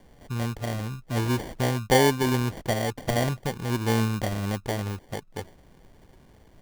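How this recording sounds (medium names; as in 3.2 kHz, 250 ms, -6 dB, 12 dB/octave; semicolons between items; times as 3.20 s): aliases and images of a low sample rate 1.3 kHz, jitter 0%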